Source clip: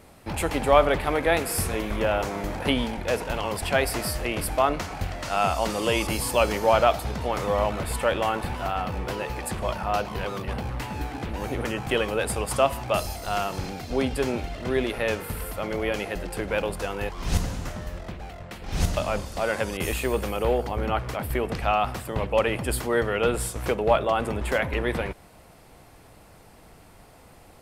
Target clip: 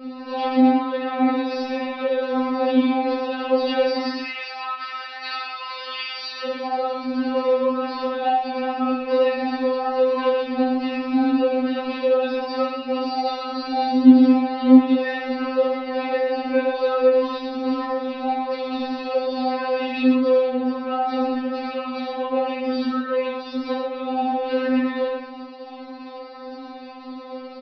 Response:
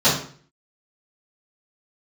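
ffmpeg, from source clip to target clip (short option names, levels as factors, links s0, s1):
-filter_complex "[0:a]acompressor=threshold=0.0251:ratio=6,asoftclip=type=tanh:threshold=0.0335,aphaser=in_gain=1:out_gain=1:delay=1.9:decay=0.56:speed=1.7:type=triangular,asettb=1/sr,asplit=3[s0][s1][s2];[s0]atrim=end=4.094[s3];[s1]atrim=start=4.09:end=6.44,asetpts=PTS-STARTPTS,afade=t=in:d=0.004:c=qsin,afade=t=out:st=2.346:d=0.004:c=qsin,highpass=f=1700:t=q:w=1.7[s4];[s2]atrim=start=6.436[s5];[s3][s4]acrossfade=d=0.004:c1=hsin:c2=qsin[s6];[s6][s5]acrossfade=d=0.004:c1=qsin:c2=hsin,aecho=1:1:69.97|122.4:0.447|0.398[s7];[1:a]atrim=start_sample=2205,atrim=end_sample=6615[s8];[s7][s8]afir=irnorm=-1:irlink=0,aresample=11025,aresample=44100,afftfilt=real='re*3.46*eq(mod(b,12),0)':imag='im*3.46*eq(mod(b,12),0)':win_size=2048:overlap=0.75,volume=0.398"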